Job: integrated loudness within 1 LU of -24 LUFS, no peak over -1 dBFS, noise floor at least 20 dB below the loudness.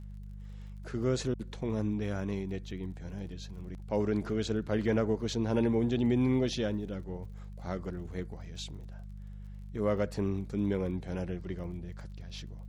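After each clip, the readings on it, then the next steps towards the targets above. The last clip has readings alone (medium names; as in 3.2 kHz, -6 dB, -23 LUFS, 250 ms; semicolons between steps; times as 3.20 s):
tick rate 35 per s; hum 50 Hz; highest harmonic 200 Hz; hum level -41 dBFS; loudness -33.5 LUFS; peak level -17.5 dBFS; loudness target -24.0 LUFS
-> de-click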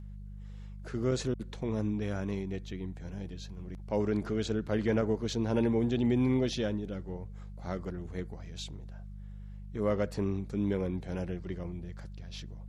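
tick rate 0.16 per s; hum 50 Hz; highest harmonic 200 Hz; hum level -41 dBFS
-> de-hum 50 Hz, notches 4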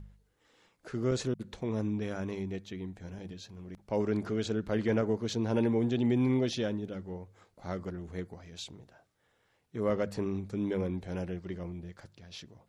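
hum not found; loudness -33.0 LUFS; peak level -18.0 dBFS; loudness target -24.0 LUFS
-> trim +9 dB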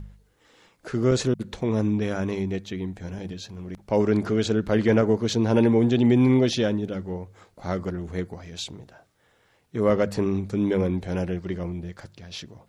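loudness -24.0 LUFS; peak level -9.0 dBFS; noise floor -63 dBFS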